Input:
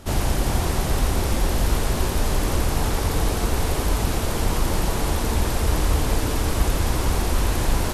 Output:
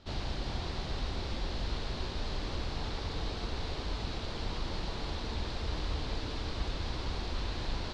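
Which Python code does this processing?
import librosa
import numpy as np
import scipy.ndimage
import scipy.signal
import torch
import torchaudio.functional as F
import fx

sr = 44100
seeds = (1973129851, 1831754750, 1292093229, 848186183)

y = fx.ladder_lowpass(x, sr, hz=4800.0, resonance_pct=55)
y = y * 10.0 ** (-4.5 / 20.0)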